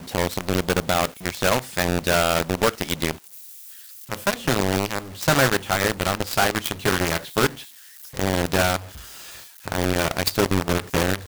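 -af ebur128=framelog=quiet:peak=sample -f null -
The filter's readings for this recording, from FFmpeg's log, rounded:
Integrated loudness:
  I:         -22.6 LUFS
  Threshold: -33.4 LUFS
Loudness range:
  LRA:         2.8 LU
  Threshold: -43.5 LUFS
  LRA low:   -24.9 LUFS
  LRA high:  -22.1 LUFS
Sample peak:
  Peak:      -11.0 dBFS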